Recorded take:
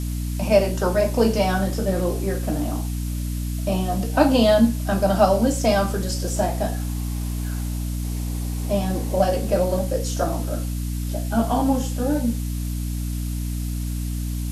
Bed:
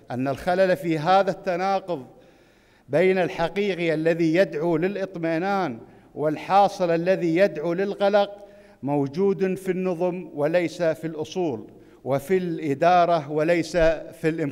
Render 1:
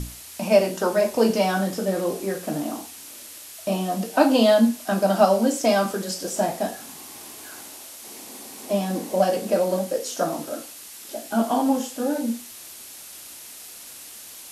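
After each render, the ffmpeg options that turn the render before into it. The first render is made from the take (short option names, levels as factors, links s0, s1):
-af "bandreject=f=60:t=h:w=6,bandreject=f=120:t=h:w=6,bandreject=f=180:t=h:w=6,bandreject=f=240:t=h:w=6,bandreject=f=300:t=h:w=6"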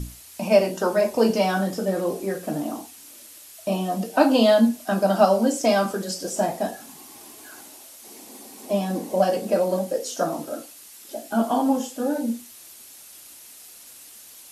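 -af "afftdn=nr=6:nf=-42"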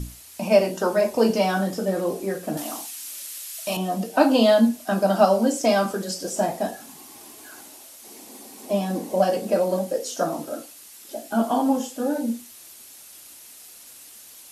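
-filter_complex "[0:a]asettb=1/sr,asplit=3[s0][s1][s2];[s0]atrim=end=2.574[s3];[s1]atrim=start=2.57:end=3.77,asetpts=PTS-STARTPTS,afade=t=in:d=0.004:c=qsin,afade=t=out:st=1.196:d=0.004:c=qsin,tiltshelf=f=840:g=-9.5[s4];[s2]atrim=start=3.766[s5];[s3][s4]acrossfade=d=0.004:c1=hsin:c2=qsin[s6];[s6][s5]acrossfade=d=0.004:c1=qsin:c2=hsin"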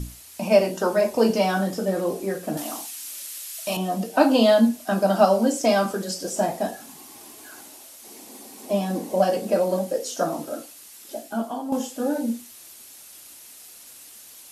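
-filter_complex "[0:a]asplit=2[s0][s1];[s0]atrim=end=11.72,asetpts=PTS-STARTPTS,afade=t=out:st=11.17:d=0.55:c=qua:silence=0.298538[s2];[s1]atrim=start=11.72,asetpts=PTS-STARTPTS,afade=t=in:d=0.004:c=hsin:silence=0.298538[s3];[s2][s3]concat=n=2:v=0:a=1"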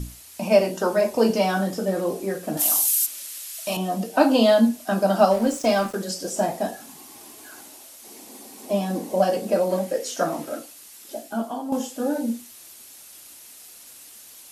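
-filter_complex "[0:a]asplit=3[s0][s1][s2];[s0]afade=t=out:st=2.59:d=0.02[s3];[s1]aemphasis=mode=production:type=riaa,afade=t=in:st=2.59:d=0.02,afade=t=out:st=3.05:d=0.02[s4];[s2]afade=t=in:st=3.05:d=0.02[s5];[s3][s4][s5]amix=inputs=3:normalize=0,asettb=1/sr,asplit=3[s6][s7][s8];[s6]atrim=end=5.314[s9];[s7]atrim=start=5.31:end=5.95,asetpts=PTS-STARTPTS,afade=t=in:d=0.004:c=qsin,afade=t=out:st=0.636:d=0.004:c=qsin,aeval=exprs='sgn(val(0))*max(abs(val(0))-0.0133,0)':c=same[s10];[s8]atrim=start=5.946[s11];[s9][s10]acrossfade=d=0.004:c1=hsin:c2=qsin[s12];[s12][s11]acrossfade=d=0.004:c1=qsin:c2=hsin,asettb=1/sr,asplit=3[s13][s14][s15];[s13]atrim=end=9.704[s16];[s14]atrim=start=9.7:end=10.59,asetpts=PTS-STARTPTS,afade=t=in:d=0.004:c=qsin,afade=t=out:st=0.886:d=0.004:c=qsin,equalizer=f=2000:w=1.5:g=7[s17];[s15]atrim=start=10.586[s18];[s16][s17]acrossfade=d=0.004:c1=hsin:c2=qsin[s19];[s19][s18]acrossfade=d=0.004:c1=qsin:c2=hsin"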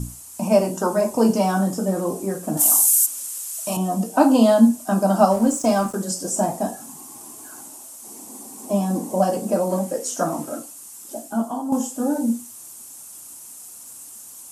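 -af "equalizer=f=125:t=o:w=1:g=6,equalizer=f=250:t=o:w=1:g=4,equalizer=f=500:t=o:w=1:g=-3,equalizer=f=1000:t=o:w=1:g=6,equalizer=f=2000:t=o:w=1:g=-7,equalizer=f=4000:t=o:w=1:g=-8,equalizer=f=8000:t=o:w=1:g=10"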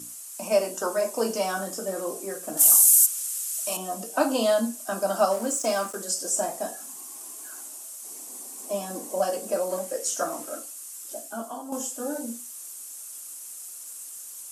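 -af "highpass=540,equalizer=f=870:w=2.3:g=-9.5"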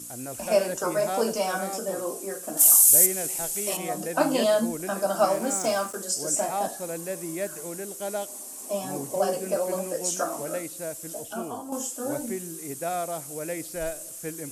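-filter_complex "[1:a]volume=0.237[s0];[0:a][s0]amix=inputs=2:normalize=0"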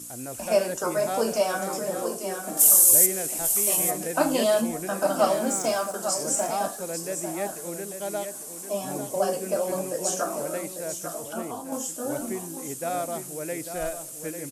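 -af "aecho=1:1:846:0.376"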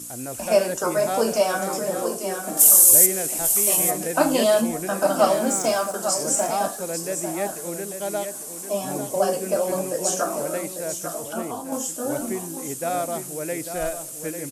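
-af "volume=1.5,alimiter=limit=0.891:level=0:latency=1"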